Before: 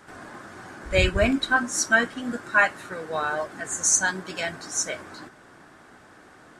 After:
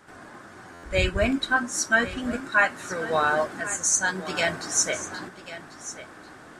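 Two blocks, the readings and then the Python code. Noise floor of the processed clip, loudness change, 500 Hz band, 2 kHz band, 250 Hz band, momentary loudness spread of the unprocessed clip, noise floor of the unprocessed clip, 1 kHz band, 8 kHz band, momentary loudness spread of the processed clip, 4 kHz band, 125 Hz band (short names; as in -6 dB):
-47 dBFS, -0.5 dB, 0.0 dB, -0.5 dB, -0.5 dB, 21 LU, -51 dBFS, +1.0 dB, -0.5 dB, 16 LU, 0.0 dB, -1.5 dB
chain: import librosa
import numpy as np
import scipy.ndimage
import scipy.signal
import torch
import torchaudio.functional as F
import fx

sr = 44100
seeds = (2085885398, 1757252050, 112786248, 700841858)

p1 = fx.rider(x, sr, range_db=5, speed_s=0.5)
p2 = p1 + fx.echo_single(p1, sr, ms=1092, db=-14.5, dry=0)
y = fx.buffer_glitch(p2, sr, at_s=(0.73,), block=512, repeats=8)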